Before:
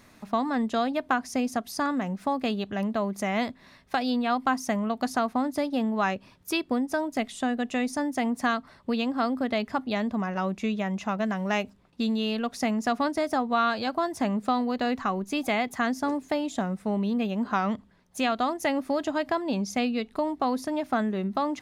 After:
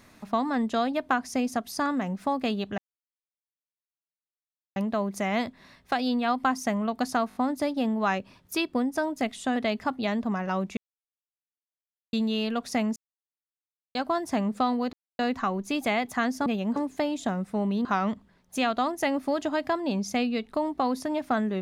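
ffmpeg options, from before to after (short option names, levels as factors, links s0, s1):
-filter_complex "[0:a]asplit=14[s0][s1][s2][s3][s4][s5][s6][s7][s8][s9][s10][s11][s12][s13];[s0]atrim=end=2.78,asetpts=PTS-STARTPTS,afade=t=out:st=2.776:d=0.004:c=hsin,apad=pad_dur=1.98[s14];[s1]atrim=start=2.78:end=5.332,asetpts=PTS-STARTPTS,afade=t=in:d=0.004:c=hsin[s15];[s2]atrim=start=5.308:end=5.332[s16];[s3]atrim=start=5.308:end=5.332[s17];[s4]atrim=start=5.308:end=7.522[s18];[s5]atrim=start=9.438:end=10.65,asetpts=PTS-STARTPTS,afade=t=out:st=1.208:d=0.004:c=hsin[s19];[s6]atrim=start=10.65:end=12.01,asetpts=PTS-STARTPTS,volume=0[s20];[s7]atrim=start=12.01:end=12.84,asetpts=PTS-STARTPTS,afade=t=in:d=0.004:c=hsin,afade=t=out:st=0.826:d=0.004:c=hsin[s21];[s8]atrim=start=12.84:end=13.83,asetpts=PTS-STARTPTS,volume=0[s22];[s9]atrim=start=13.83:end=14.81,asetpts=PTS-STARTPTS,afade=t=in:d=0.004:c=hsin,afade=t=out:st=0.976:d=0.004:c=hsin,apad=pad_dur=0.26[s23];[s10]atrim=start=14.81:end=16.082,asetpts=PTS-STARTPTS,afade=t=in:d=0.004:c=hsin[s24];[s11]atrim=start=17.168:end=17.472[s25];[s12]atrim=start=16.078:end=17.172[s26];[s13]atrim=start=17.468[s27];[s14][s15]concat=n=2:v=0:a=1[s28];[s28][s16]acrossfade=d=0.004:c1=hsin:c2=hsin[s29];[s29][s17]acrossfade=d=0.004:c1=hsin:c2=hsin[s30];[s30][s18]acrossfade=d=0.004:c1=hsin:c2=hsin[s31];[s19][s20][s21][s22][s23][s24]concat=n=6:v=0:a=1[s32];[s31][s32]acrossfade=d=0.004:c1=hsin:c2=hsin[s33];[s33][s25]acrossfade=d=0.004:c1=hsin:c2=hsin[s34];[s34][s26]acrossfade=d=0.004:c1=hsin:c2=hsin[s35];[s35][s27]acrossfade=d=0.004:c1=hsin:c2=hsin"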